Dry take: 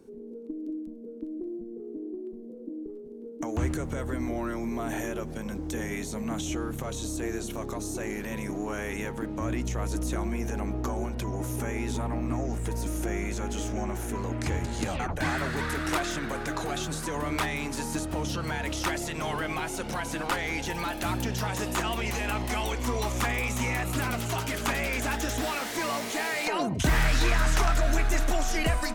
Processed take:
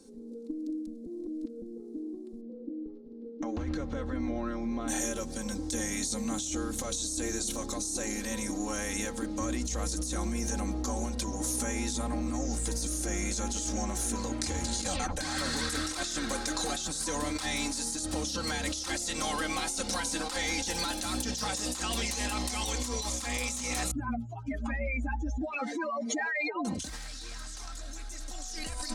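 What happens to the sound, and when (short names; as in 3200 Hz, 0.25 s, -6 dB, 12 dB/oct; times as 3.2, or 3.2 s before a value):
1.06–1.62 reverse
2.41–4.88 air absorption 300 m
23.91–26.65 spectral contrast raised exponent 3.1
whole clip: band shelf 6100 Hz +14 dB; comb 3.8 ms, depth 74%; negative-ratio compressor -27 dBFS, ratio -1; gain -6 dB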